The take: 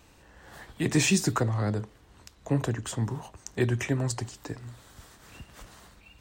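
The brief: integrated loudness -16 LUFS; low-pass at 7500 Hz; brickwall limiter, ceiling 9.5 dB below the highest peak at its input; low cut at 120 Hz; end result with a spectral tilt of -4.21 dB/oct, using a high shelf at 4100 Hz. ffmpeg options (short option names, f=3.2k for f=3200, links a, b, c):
-af "highpass=120,lowpass=7.5k,highshelf=f=4.1k:g=8.5,volume=15.5dB,alimiter=limit=-3.5dB:level=0:latency=1"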